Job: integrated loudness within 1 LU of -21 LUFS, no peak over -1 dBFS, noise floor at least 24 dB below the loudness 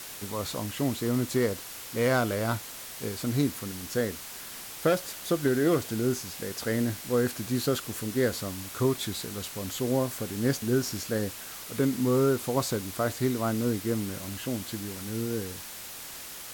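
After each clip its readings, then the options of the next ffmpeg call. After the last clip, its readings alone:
noise floor -42 dBFS; noise floor target -54 dBFS; loudness -29.5 LUFS; peak -13.0 dBFS; loudness target -21.0 LUFS
-> -af "afftdn=nr=12:nf=-42"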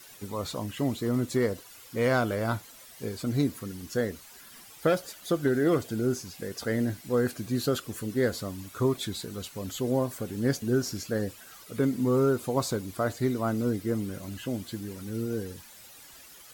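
noise floor -50 dBFS; noise floor target -54 dBFS
-> -af "afftdn=nr=6:nf=-50"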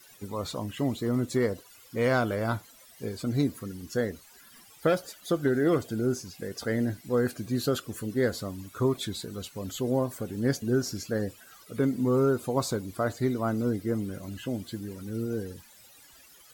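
noise floor -55 dBFS; loudness -30.0 LUFS; peak -13.0 dBFS; loudness target -21.0 LUFS
-> -af "volume=9dB"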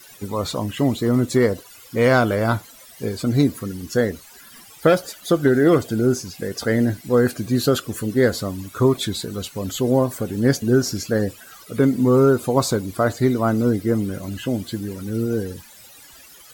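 loudness -21.0 LUFS; peak -4.0 dBFS; noise floor -46 dBFS

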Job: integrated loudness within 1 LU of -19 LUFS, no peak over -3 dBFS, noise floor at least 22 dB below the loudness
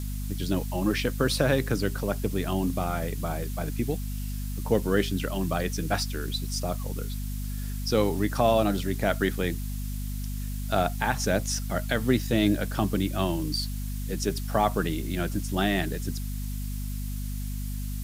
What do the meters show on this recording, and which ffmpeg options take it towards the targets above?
hum 50 Hz; harmonics up to 250 Hz; hum level -30 dBFS; noise floor -32 dBFS; noise floor target -51 dBFS; loudness -28.5 LUFS; peak -9.5 dBFS; loudness target -19.0 LUFS
-> -af "bandreject=f=50:t=h:w=4,bandreject=f=100:t=h:w=4,bandreject=f=150:t=h:w=4,bandreject=f=200:t=h:w=4,bandreject=f=250:t=h:w=4"
-af "afftdn=nr=19:nf=-32"
-af "volume=9.5dB,alimiter=limit=-3dB:level=0:latency=1"

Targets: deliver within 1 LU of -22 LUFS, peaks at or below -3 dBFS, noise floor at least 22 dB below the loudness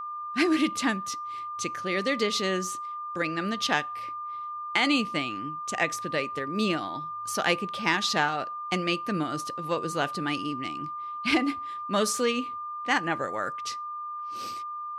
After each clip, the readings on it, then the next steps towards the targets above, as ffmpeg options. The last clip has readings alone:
steady tone 1200 Hz; tone level -33 dBFS; loudness -28.5 LUFS; peak -9.5 dBFS; loudness target -22.0 LUFS
-> -af "bandreject=f=1.2k:w=30"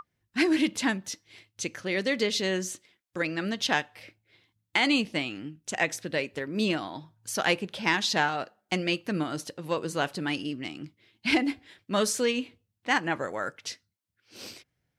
steady tone none; loudness -28.5 LUFS; peak -10.0 dBFS; loudness target -22.0 LUFS
-> -af "volume=6.5dB"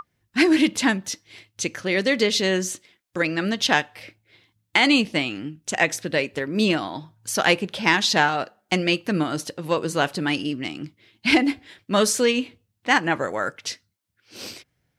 loudness -22.0 LUFS; peak -3.5 dBFS; noise floor -75 dBFS

